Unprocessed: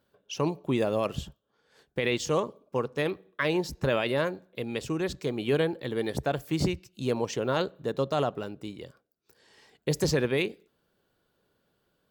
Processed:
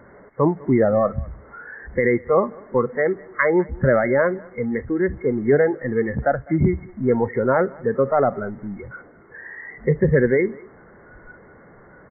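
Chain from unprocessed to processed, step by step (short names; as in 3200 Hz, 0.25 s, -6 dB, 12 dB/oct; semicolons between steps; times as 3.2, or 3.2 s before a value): zero-crossing step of -34 dBFS; spectral noise reduction 15 dB; brick-wall FIR low-pass 2200 Hz; echo 0.202 s -24 dB; gain +9 dB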